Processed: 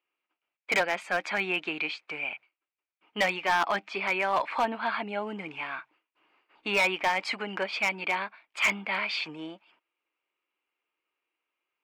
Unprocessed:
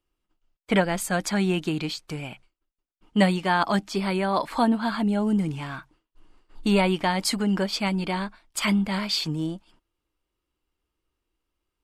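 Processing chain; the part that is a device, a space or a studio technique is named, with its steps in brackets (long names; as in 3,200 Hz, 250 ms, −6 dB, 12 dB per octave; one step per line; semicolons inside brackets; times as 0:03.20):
megaphone (band-pass filter 560–2,600 Hz; parametric band 2,400 Hz +12 dB 0.46 octaves; hard clipping −19 dBFS, distortion −12 dB)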